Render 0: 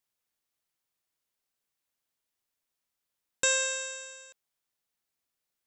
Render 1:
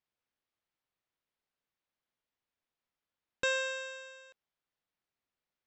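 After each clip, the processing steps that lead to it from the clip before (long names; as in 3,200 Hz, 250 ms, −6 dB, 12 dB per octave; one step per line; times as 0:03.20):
high-frequency loss of the air 200 metres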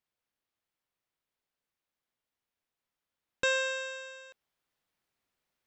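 speech leveller 2 s
level +3.5 dB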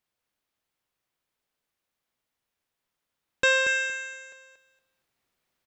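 dynamic equaliser 2,000 Hz, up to +6 dB, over −44 dBFS, Q 1.7
repeating echo 233 ms, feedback 20%, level −8 dB
level +4.5 dB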